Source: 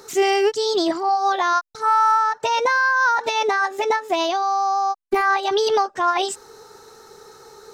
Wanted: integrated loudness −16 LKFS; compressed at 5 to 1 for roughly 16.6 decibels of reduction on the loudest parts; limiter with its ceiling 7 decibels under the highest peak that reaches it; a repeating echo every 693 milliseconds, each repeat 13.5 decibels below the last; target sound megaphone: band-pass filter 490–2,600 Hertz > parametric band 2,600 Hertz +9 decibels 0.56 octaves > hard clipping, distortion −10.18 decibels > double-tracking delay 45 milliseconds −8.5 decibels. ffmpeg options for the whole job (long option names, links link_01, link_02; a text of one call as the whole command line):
ffmpeg -i in.wav -filter_complex "[0:a]acompressor=threshold=-33dB:ratio=5,alimiter=level_in=4.5dB:limit=-24dB:level=0:latency=1,volume=-4.5dB,highpass=490,lowpass=2600,equalizer=frequency=2600:width_type=o:width=0.56:gain=9,aecho=1:1:693|1386:0.211|0.0444,asoftclip=type=hard:threshold=-36dB,asplit=2[link_01][link_02];[link_02]adelay=45,volume=-8.5dB[link_03];[link_01][link_03]amix=inputs=2:normalize=0,volume=23dB" out.wav